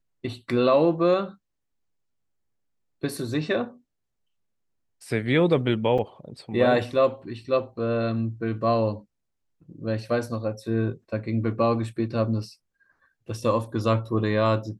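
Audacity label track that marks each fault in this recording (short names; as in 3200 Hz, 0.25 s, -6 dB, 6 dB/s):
5.980000	5.990000	gap 5.1 ms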